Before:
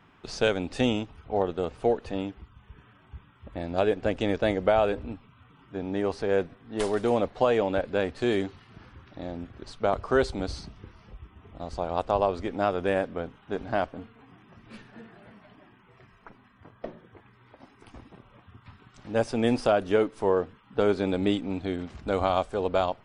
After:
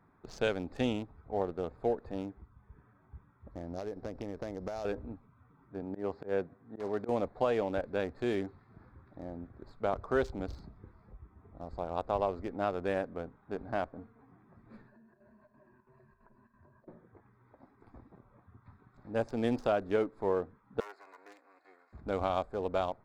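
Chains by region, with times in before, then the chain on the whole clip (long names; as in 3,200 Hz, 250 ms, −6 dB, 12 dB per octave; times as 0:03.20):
0:03.51–0:04.85: samples sorted by size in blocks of 8 samples + downward compressor, threshold −27 dBFS + high-frequency loss of the air 120 metres
0:05.81–0:07.09: high-pass filter 85 Hz + volume swells 106 ms + high-frequency loss of the air 110 metres
0:14.87–0:16.88: EQ curve with evenly spaced ripples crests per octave 1.4, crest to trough 15 dB + downward compressor 12 to 1, threshold −50 dBFS + square-wave tremolo 3 Hz, depth 60%, duty 80%
0:20.80–0:21.93: lower of the sound and its delayed copy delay 2.8 ms + high-pass filter 1,400 Hz + parametric band 3,500 Hz −13.5 dB 0.29 octaves
whole clip: adaptive Wiener filter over 15 samples; parametric band 3,100 Hz −2.5 dB 0.27 octaves; level −6.5 dB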